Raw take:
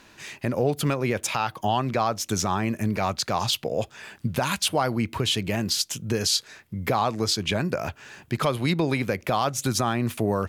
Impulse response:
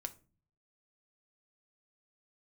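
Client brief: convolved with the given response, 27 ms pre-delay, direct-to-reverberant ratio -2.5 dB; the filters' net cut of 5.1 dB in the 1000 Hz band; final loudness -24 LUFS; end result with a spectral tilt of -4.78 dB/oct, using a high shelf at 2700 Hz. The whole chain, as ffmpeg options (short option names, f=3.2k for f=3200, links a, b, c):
-filter_complex "[0:a]equalizer=f=1k:t=o:g=-6.5,highshelf=f=2.7k:g=-3.5,asplit=2[a][b];[1:a]atrim=start_sample=2205,adelay=27[c];[b][c]afir=irnorm=-1:irlink=0,volume=5dB[d];[a][d]amix=inputs=2:normalize=0,volume=-1dB"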